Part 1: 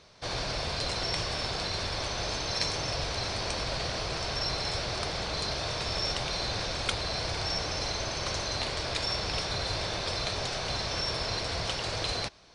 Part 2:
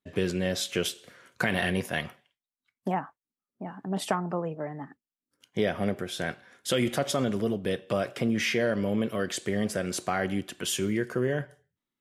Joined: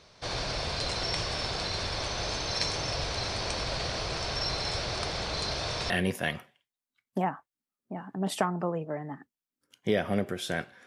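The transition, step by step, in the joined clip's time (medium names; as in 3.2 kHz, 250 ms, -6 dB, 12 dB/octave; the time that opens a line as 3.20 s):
part 1
5.90 s: go over to part 2 from 1.60 s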